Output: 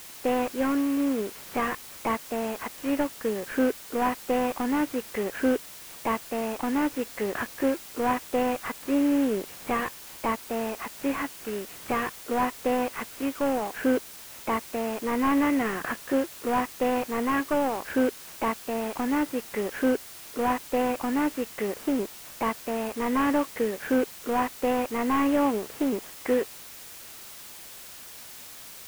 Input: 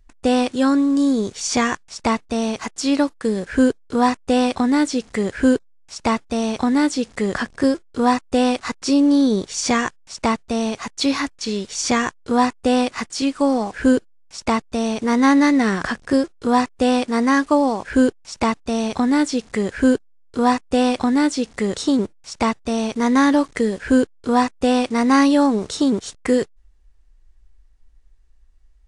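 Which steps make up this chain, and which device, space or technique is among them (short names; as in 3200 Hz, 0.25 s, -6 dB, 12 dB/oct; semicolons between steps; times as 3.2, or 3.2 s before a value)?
army field radio (BPF 310–3100 Hz; CVSD 16 kbps; white noise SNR 16 dB); gain -4 dB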